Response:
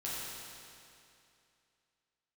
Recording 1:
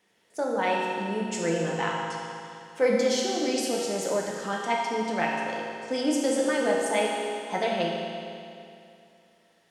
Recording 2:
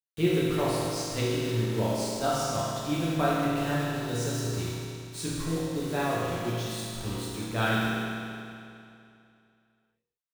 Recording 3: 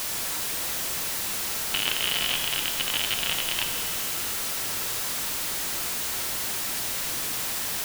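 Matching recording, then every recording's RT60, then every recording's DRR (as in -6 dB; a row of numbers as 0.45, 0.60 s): 2; 2.6, 2.6, 2.6 s; -3.0, -8.5, 4.5 dB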